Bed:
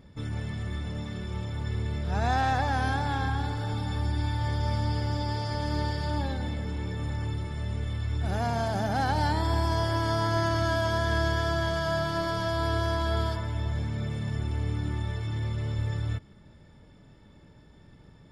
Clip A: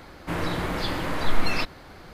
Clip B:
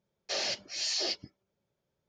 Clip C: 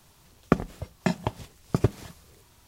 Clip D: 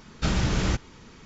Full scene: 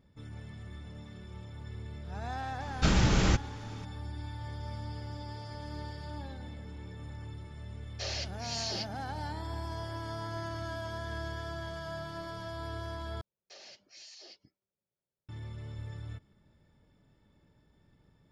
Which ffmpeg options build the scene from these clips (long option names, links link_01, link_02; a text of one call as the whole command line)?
ffmpeg -i bed.wav -i cue0.wav -i cue1.wav -i cue2.wav -i cue3.wav -filter_complex "[2:a]asplit=2[link_01][link_02];[0:a]volume=-12dB[link_03];[link_02]alimiter=level_in=4dB:limit=-24dB:level=0:latency=1:release=147,volume=-4dB[link_04];[link_03]asplit=2[link_05][link_06];[link_05]atrim=end=13.214[link_07];[link_04]atrim=end=2.08,asetpts=PTS-STARTPTS,volume=-14dB[link_08];[link_06]atrim=start=15.286[link_09];[4:a]atrim=end=1.25,asetpts=PTS-STARTPTS,volume=-0.5dB,afade=type=in:duration=0.004:curve=hsin,afade=type=out:start_time=1.246:duration=0.004:curve=hsin,adelay=2600[link_10];[link_01]atrim=end=2.08,asetpts=PTS-STARTPTS,volume=-5dB,afade=type=in:duration=0.004:curve=hsin,afade=type=out:start_time=2.076:duration=0.004:curve=hsin,adelay=339570S[link_11];[link_07][link_08]acrossfade=duration=0.004:curve1=hsin:curve2=hsin[link_12];[link_12][link_09]acrossfade=duration=0.004:curve1=hsin:curve2=hsin[link_13];[link_13][link_10][link_11]amix=inputs=3:normalize=0" out.wav